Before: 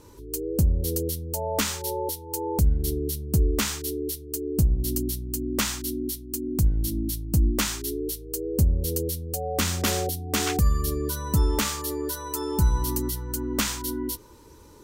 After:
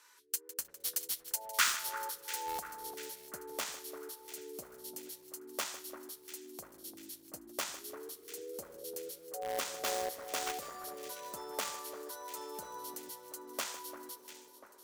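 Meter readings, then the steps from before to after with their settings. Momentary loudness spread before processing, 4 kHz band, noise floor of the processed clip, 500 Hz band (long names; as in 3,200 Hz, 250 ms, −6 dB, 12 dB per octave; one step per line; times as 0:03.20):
7 LU, −8.5 dB, −59 dBFS, −13.0 dB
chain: first difference
band-pass filter sweep 1,600 Hz → 600 Hz, 0:01.41–0:03.04
in parallel at −6.5 dB: bit-depth reduction 8 bits, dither none
on the sum: high-shelf EQ 8,800 Hz +4 dB
on a send: delay that swaps between a low-pass and a high-pass 346 ms, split 1,700 Hz, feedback 73%, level −10.5 dB
on the sum: feedback echo at a low word length 155 ms, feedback 35%, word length 11 bits, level −14 dB
level +15 dB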